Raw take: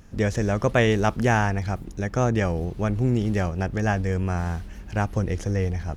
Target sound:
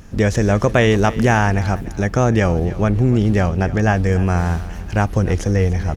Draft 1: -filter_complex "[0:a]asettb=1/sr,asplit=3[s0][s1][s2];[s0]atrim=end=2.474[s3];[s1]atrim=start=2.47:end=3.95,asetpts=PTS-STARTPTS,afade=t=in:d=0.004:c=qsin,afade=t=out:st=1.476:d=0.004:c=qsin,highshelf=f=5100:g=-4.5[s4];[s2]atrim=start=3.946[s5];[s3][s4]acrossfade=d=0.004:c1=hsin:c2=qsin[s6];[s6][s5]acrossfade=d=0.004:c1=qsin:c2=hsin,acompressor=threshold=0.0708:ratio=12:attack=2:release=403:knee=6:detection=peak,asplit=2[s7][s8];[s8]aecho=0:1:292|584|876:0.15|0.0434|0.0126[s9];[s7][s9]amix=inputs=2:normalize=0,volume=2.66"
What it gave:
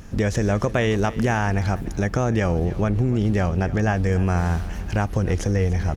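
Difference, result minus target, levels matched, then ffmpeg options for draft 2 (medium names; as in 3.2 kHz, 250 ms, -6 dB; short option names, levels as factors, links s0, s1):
compression: peak gain reduction +7.5 dB
-filter_complex "[0:a]asettb=1/sr,asplit=3[s0][s1][s2];[s0]atrim=end=2.474[s3];[s1]atrim=start=2.47:end=3.95,asetpts=PTS-STARTPTS,afade=t=in:d=0.004:c=qsin,afade=t=out:st=1.476:d=0.004:c=qsin,highshelf=f=5100:g=-4.5[s4];[s2]atrim=start=3.946[s5];[s3][s4]acrossfade=d=0.004:c1=hsin:c2=qsin[s6];[s6][s5]acrossfade=d=0.004:c1=qsin:c2=hsin,acompressor=threshold=0.188:ratio=12:attack=2:release=403:knee=6:detection=peak,asplit=2[s7][s8];[s8]aecho=0:1:292|584|876:0.15|0.0434|0.0126[s9];[s7][s9]amix=inputs=2:normalize=0,volume=2.66"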